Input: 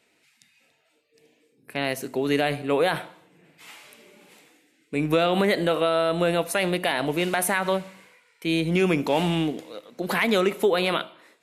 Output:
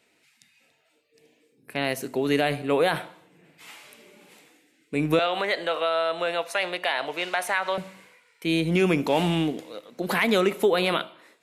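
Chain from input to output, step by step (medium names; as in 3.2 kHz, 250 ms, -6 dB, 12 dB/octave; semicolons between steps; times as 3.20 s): 5.19–7.78 s: three-band isolator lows -20 dB, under 490 Hz, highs -14 dB, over 6.7 kHz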